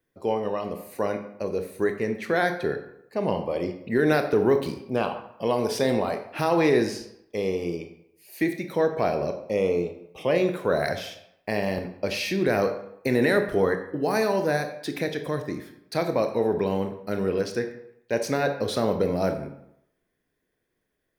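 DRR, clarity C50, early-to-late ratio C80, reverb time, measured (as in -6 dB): 6.5 dB, 9.0 dB, 11.5 dB, 0.80 s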